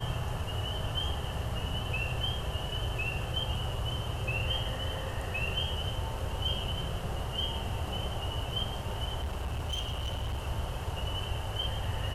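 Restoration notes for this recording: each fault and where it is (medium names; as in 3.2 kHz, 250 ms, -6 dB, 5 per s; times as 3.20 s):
9.21–10.44 s: clipped -30 dBFS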